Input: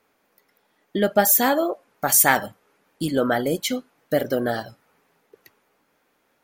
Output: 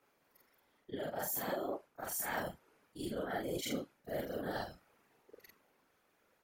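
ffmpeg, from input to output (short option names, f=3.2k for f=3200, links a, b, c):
-af "afftfilt=real='re':imag='-im':win_size=4096:overlap=0.75,areverse,acompressor=threshold=-33dB:ratio=10,areverse,afftfilt=real='hypot(re,im)*cos(2*PI*random(0))':imag='hypot(re,im)*sin(2*PI*random(1))':win_size=512:overlap=0.75,volume=3.5dB"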